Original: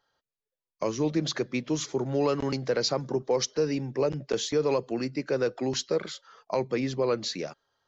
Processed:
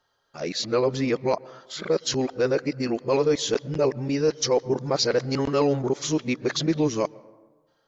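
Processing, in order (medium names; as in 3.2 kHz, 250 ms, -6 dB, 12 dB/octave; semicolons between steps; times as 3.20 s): reverse the whole clip; on a send: reverberation RT60 1.3 s, pre-delay 110 ms, DRR 22 dB; on the sum: trim +4 dB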